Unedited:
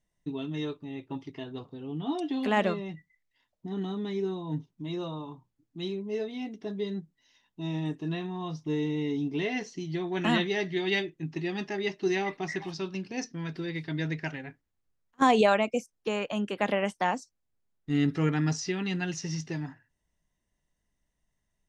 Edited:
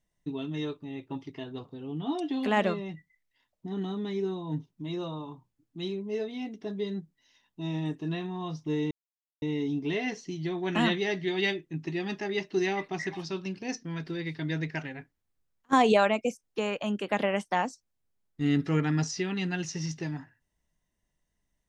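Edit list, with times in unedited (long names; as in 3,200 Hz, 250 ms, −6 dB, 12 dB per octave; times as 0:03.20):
0:08.91: splice in silence 0.51 s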